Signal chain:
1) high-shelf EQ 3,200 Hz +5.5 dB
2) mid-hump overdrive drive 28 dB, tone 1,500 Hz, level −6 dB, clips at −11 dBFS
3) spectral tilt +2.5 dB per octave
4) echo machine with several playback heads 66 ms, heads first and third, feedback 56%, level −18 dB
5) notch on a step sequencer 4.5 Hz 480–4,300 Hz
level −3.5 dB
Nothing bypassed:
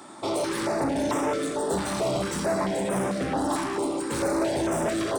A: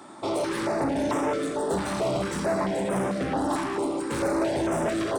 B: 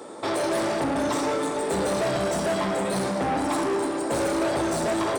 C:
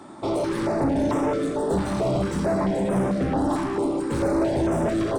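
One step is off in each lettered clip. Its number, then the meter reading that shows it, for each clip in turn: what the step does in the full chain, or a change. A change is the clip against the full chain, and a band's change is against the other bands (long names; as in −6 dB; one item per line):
1, 8 kHz band −4.5 dB
5, 125 Hz band −2.0 dB
3, 8 kHz band −9.0 dB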